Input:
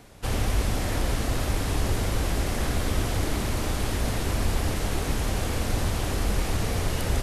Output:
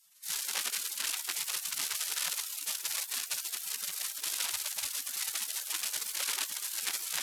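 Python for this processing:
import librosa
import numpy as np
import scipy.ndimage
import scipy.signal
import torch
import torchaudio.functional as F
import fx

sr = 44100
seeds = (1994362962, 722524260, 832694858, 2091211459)

y = fx.echo_diffused(x, sr, ms=528, feedback_pct=42, wet_db=-16.0)
y = fx.cheby_harmonics(y, sr, harmonics=(5, 6), levels_db=(-15, -9), full_scale_db=-11.0)
y = fx.spec_gate(y, sr, threshold_db=-30, keep='weak')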